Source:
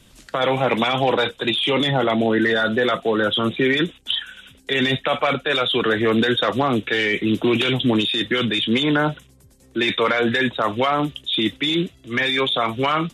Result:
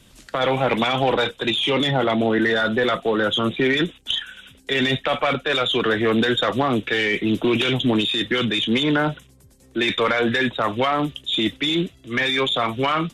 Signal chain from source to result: single-diode clipper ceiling -7.5 dBFS

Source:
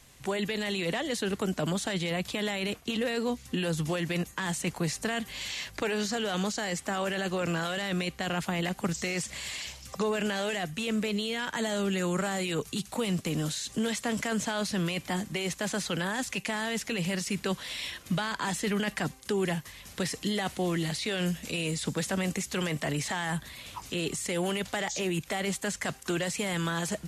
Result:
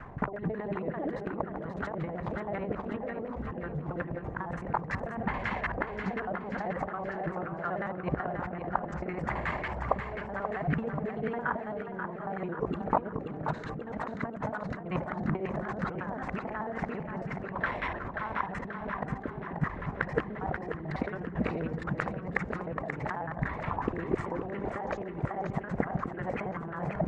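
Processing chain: time reversed locally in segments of 55 ms; resonant high shelf 2.5 kHz -7 dB, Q 1.5; band-stop 540 Hz, Q 12; compressor with a negative ratio -38 dBFS, ratio -0.5; LFO low-pass saw down 5.5 Hz 560–1500 Hz; on a send: two-band feedback delay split 390 Hz, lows 253 ms, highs 533 ms, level -7 dB; on the sum: trim +5 dB

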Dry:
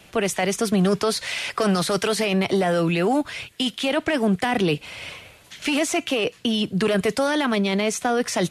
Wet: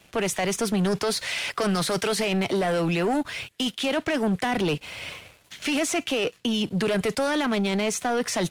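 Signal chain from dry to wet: waveshaping leveller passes 2; trim -8 dB

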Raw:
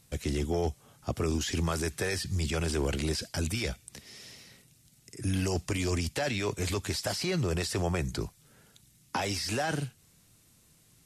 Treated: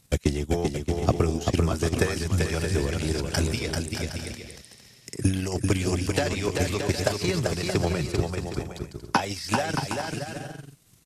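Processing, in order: transient shaper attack +12 dB, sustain -12 dB; bouncing-ball echo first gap 390 ms, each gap 0.6×, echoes 5

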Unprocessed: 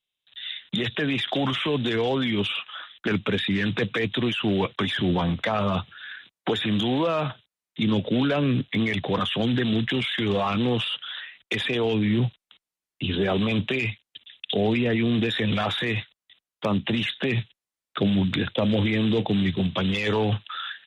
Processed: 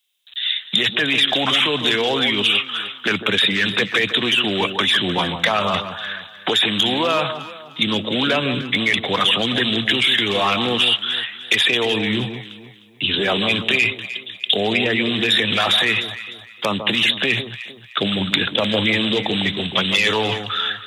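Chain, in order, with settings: tilt EQ +3.5 dB/octave; echo whose repeats swap between lows and highs 152 ms, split 1.2 kHz, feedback 54%, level -8 dB; trim +6.5 dB

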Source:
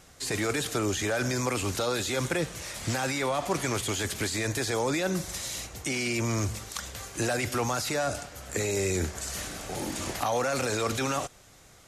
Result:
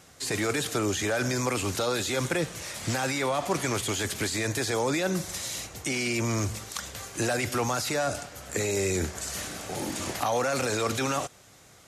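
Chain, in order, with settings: high-pass 76 Hz; trim +1 dB

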